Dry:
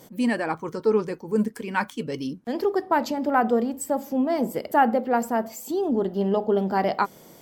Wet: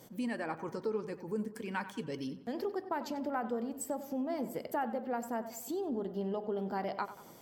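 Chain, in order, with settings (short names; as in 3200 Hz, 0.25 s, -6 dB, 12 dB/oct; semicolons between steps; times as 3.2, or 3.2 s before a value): compressor 2.5:1, threshold -29 dBFS, peak gain reduction 10.5 dB; buzz 120 Hz, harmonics 14, -66 dBFS -5 dB/oct; on a send: tape echo 94 ms, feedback 51%, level -12 dB, low-pass 3200 Hz; on the sum: gain -6.5 dB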